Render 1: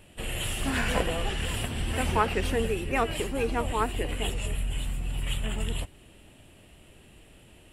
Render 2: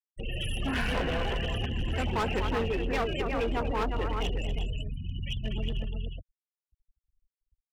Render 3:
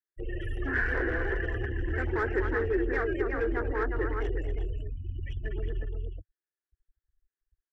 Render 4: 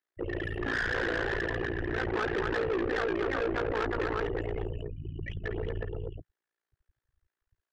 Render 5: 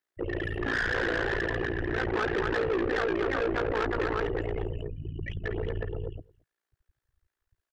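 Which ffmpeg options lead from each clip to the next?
-af "afftfilt=real='re*gte(hypot(re,im),0.0355)':imag='im*gte(hypot(re,im),0.0355)':win_size=1024:overlap=0.75,aecho=1:1:242|360:0.316|0.422,asoftclip=type=hard:threshold=-25dB"
-af "firequalizer=gain_entry='entry(100,0);entry(180,-21);entry(340,9);entry(580,-7);entry(1000,-7);entry(1700,10);entry(2600,-18);entry(5300,-14);entry(10000,-23)':delay=0.05:min_phase=1"
-filter_complex "[0:a]tremolo=f=57:d=1,asplit=2[a][b];[b]highpass=f=720:p=1,volume=19dB,asoftclip=type=tanh:threshold=-17dB[c];[a][c]amix=inputs=2:normalize=0,lowpass=f=1k:p=1,volume=-6dB,asoftclip=type=tanh:threshold=-30.5dB,volume=5dB"
-filter_complex "[0:a]asplit=2[a][b];[b]adelay=221.6,volume=-26dB,highshelf=f=4k:g=-4.99[c];[a][c]amix=inputs=2:normalize=0,volume=2dB"

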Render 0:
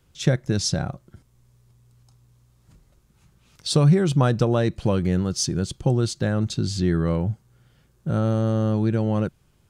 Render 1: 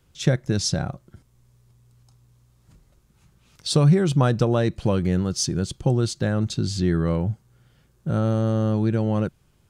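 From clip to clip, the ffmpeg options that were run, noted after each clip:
-af anull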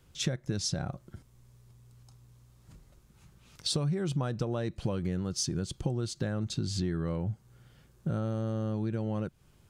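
-af "acompressor=threshold=-29dB:ratio=5"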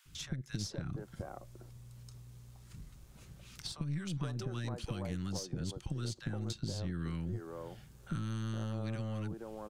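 -filter_complex "[0:a]acrossover=split=320|1100[a][b][c];[a]adelay=50[d];[b]adelay=470[e];[d][e][c]amix=inputs=3:normalize=0,acrossover=split=190|1100|5200[f][g][h][i];[f]acompressor=threshold=-44dB:ratio=4[j];[g]acompressor=threshold=-51dB:ratio=4[k];[h]acompressor=threshold=-54dB:ratio=4[l];[i]acompressor=threshold=-57dB:ratio=4[m];[j][k][l][m]amix=inputs=4:normalize=0,aeval=exprs='(tanh(44.7*val(0)+0.6)-tanh(0.6))/44.7':c=same,volume=7.5dB"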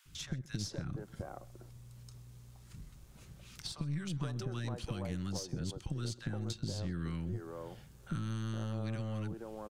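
-af "aecho=1:1:129:0.0841"

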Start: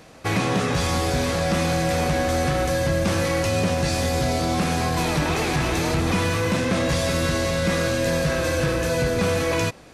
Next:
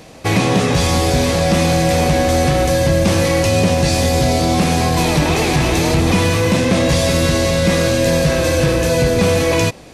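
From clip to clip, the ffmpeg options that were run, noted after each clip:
-af "equalizer=f=1.4k:t=o:w=0.74:g=-6.5,volume=8dB"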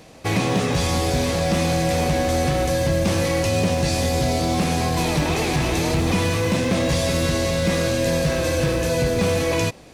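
-af "acrusher=bits=9:mode=log:mix=0:aa=0.000001,volume=-6dB"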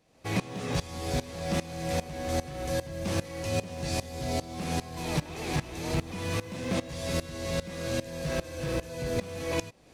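-af "aeval=exprs='val(0)*pow(10,-19*if(lt(mod(-2.5*n/s,1),2*abs(-2.5)/1000),1-mod(-2.5*n/s,1)/(2*abs(-2.5)/1000),(mod(-2.5*n/s,1)-2*abs(-2.5)/1000)/(1-2*abs(-2.5)/1000))/20)':c=same,volume=-5.5dB"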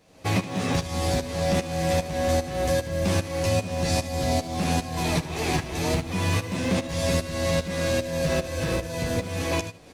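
-af "acompressor=threshold=-30dB:ratio=6,aecho=1:1:11|76:0.562|0.211,volume=8dB"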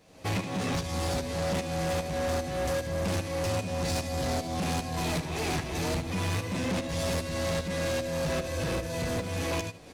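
-af "asoftclip=type=tanh:threshold=-26dB"

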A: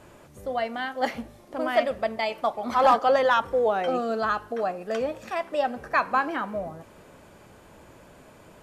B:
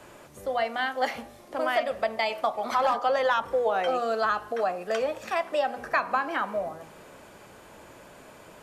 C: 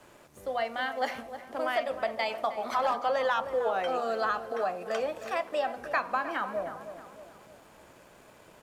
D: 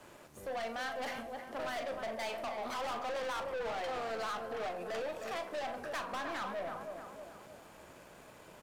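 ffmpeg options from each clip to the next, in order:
-filter_complex "[0:a]lowshelf=f=250:g=-8.5,acrossover=split=190|380[a][b][c];[a]acompressor=threshold=-53dB:ratio=4[d];[b]acompressor=threshold=-49dB:ratio=4[e];[c]acompressor=threshold=-26dB:ratio=4[f];[d][e][f]amix=inputs=3:normalize=0,bandreject=f=80.75:t=h:w=4,bandreject=f=161.5:t=h:w=4,bandreject=f=242.25:t=h:w=4,bandreject=f=323:t=h:w=4,bandreject=f=403.75:t=h:w=4,bandreject=f=484.5:t=h:w=4,bandreject=f=565.25:t=h:w=4,bandreject=f=646:t=h:w=4,bandreject=f=726.75:t=h:w=4,bandreject=f=807.5:t=h:w=4,bandreject=f=888.25:t=h:w=4,bandreject=f=969:t=h:w=4,bandreject=f=1.04975k:t=h:w=4,bandreject=f=1.1305k:t=h:w=4,bandreject=f=1.21125k:t=h:w=4,volume=4dB"
-filter_complex "[0:a]aeval=exprs='sgn(val(0))*max(abs(val(0))-0.00133,0)':c=same,asplit=2[a][b];[b]adelay=312,lowpass=f=1.6k:p=1,volume=-10.5dB,asplit=2[c][d];[d]adelay=312,lowpass=f=1.6k:p=1,volume=0.51,asplit=2[e][f];[f]adelay=312,lowpass=f=1.6k:p=1,volume=0.51,asplit=2[g][h];[h]adelay=312,lowpass=f=1.6k:p=1,volume=0.51,asplit=2[i][j];[j]adelay=312,lowpass=f=1.6k:p=1,volume=0.51,asplit=2[k][l];[l]adelay=312,lowpass=f=1.6k:p=1,volume=0.51[m];[a][c][e][g][i][k][m]amix=inputs=7:normalize=0,volume=-3.5dB"
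-filter_complex "[0:a]aeval=exprs='(tanh(63.1*val(0)+0.15)-tanh(0.15))/63.1':c=same,asplit=2[a][b];[b]adelay=40,volume=-11dB[c];[a][c]amix=inputs=2:normalize=0"

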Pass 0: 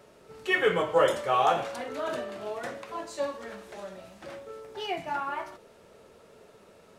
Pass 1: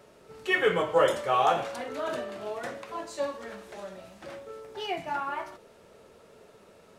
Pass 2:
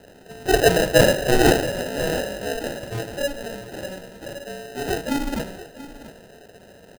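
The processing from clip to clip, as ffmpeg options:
-af anull
-af "acrusher=samples=39:mix=1:aa=0.000001,aecho=1:1:684:0.168,volume=8dB"

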